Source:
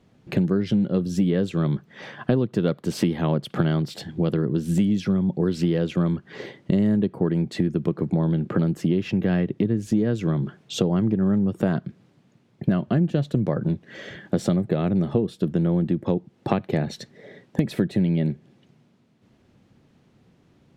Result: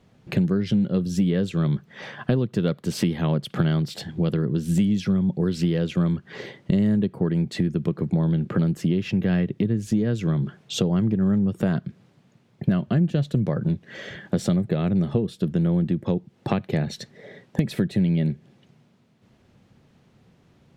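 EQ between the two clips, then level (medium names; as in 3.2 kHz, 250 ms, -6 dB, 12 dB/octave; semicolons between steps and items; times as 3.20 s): peaking EQ 300 Hz -4.5 dB 0.7 oct; dynamic bell 800 Hz, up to -5 dB, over -40 dBFS, Q 0.71; +2.0 dB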